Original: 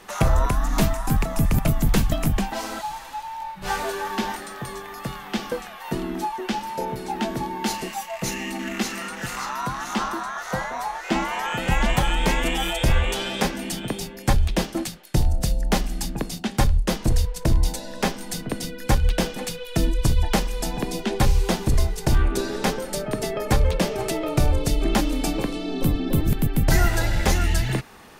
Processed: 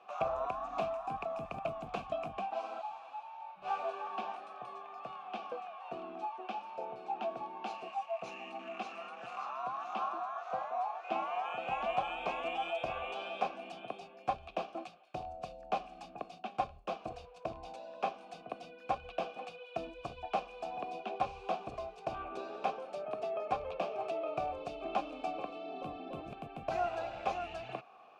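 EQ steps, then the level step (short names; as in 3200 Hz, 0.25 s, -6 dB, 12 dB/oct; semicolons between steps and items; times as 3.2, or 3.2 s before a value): vowel filter a; air absorption 56 m; 0.0 dB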